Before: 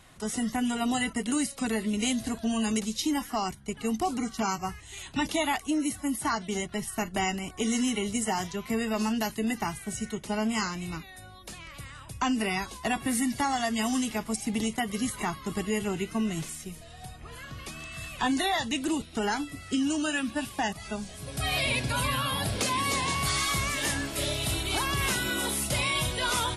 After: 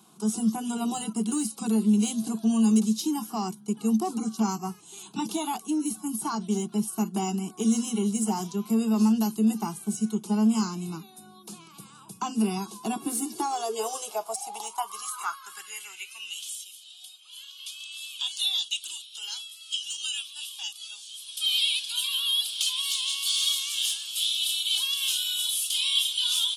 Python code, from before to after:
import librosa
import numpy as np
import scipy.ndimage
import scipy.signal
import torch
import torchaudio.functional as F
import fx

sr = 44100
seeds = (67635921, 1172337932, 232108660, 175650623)

p1 = fx.fixed_phaser(x, sr, hz=380.0, stages=8)
p2 = np.clip(10.0 ** (30.5 / 20.0) * p1, -1.0, 1.0) / 10.0 ** (30.5 / 20.0)
p3 = p1 + (p2 * 10.0 ** (-10.0 / 20.0))
p4 = fx.high_shelf(p3, sr, hz=9400.0, db=6.5)
p5 = fx.filter_sweep_highpass(p4, sr, from_hz=220.0, to_hz=3200.0, start_s=12.78, end_s=16.46, q=6.9)
p6 = fx.peak_eq(p5, sr, hz=61.0, db=-3.5, octaves=2.4)
y = p6 * 10.0 ** (-3.0 / 20.0)